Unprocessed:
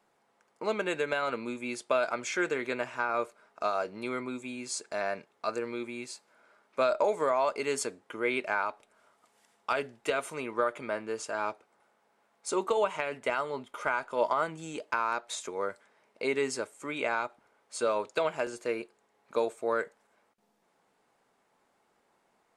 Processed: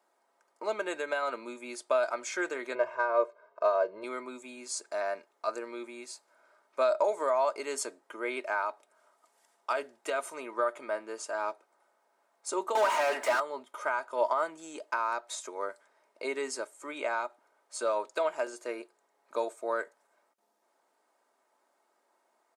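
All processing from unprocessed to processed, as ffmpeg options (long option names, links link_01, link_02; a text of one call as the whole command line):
ffmpeg -i in.wav -filter_complex "[0:a]asettb=1/sr,asplit=3[link_01][link_02][link_03];[link_01]atrim=end=2.754[link_04];[link_02]atrim=start=2.75:end=4.04,asetpts=PTS-STARTPTS,afade=type=in:duration=0.004:curve=qsin,afade=type=out:start_time=1.286:duration=0.004:curve=qsin,tiltshelf=frequency=1100:gain=4.5,aecho=1:1:1.9:0.88,atrim=end_sample=56889,adynamicsmooth=sensitivity=1.5:basefreq=3600[link_05];[link_03]atrim=start=4.036[link_06];[link_04][link_05]acrossfade=duration=0.004:curve1=hsin:curve2=qsin[link_07];[link_07][link_06]acrossfade=duration=0.004:curve1=qsin:curve2=hsin,asettb=1/sr,asplit=3[link_08][link_09][link_10];[link_08]atrim=end=12.754[link_11];[link_09]atrim=start=12.75:end=13.4,asetpts=PTS-STARTPTS,afade=type=in:duration=0.004:curve=qsin,afade=type=out:start_time=0.646:duration=0.004:curve=qsin,highpass=frequency=800:poles=1,highshelf=frequency=5900:gain=8.5,asplit=2[link_12][link_13];[link_13]highpass=frequency=720:poles=1,volume=36dB,asoftclip=type=tanh:threshold=-16.5dB[link_14];[link_12][link_14]amix=inputs=2:normalize=0,lowpass=frequency=1400:poles=1,volume=-6dB[link_15];[link_10]atrim=start=13.396[link_16];[link_11][link_15]acrossfade=duration=0.004:curve1=hsin:curve2=qsin[link_17];[link_17][link_16]acrossfade=duration=0.004:curve1=qsin:curve2=hsin,highpass=440,equalizer=frequency=2700:width_type=o:width=1.4:gain=-6.5,aecho=1:1:3.2:0.37" out.wav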